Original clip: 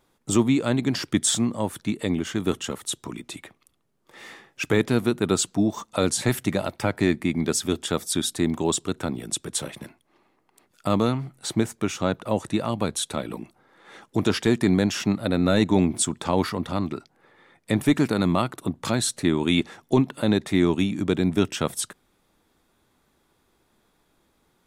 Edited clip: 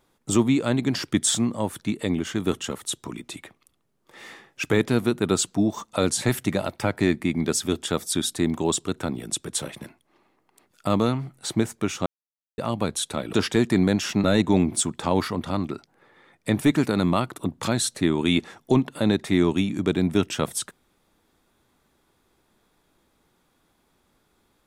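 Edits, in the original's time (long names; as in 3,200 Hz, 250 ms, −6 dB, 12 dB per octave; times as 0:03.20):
0:12.06–0:12.58: silence
0:13.33–0:14.24: remove
0:15.15–0:15.46: remove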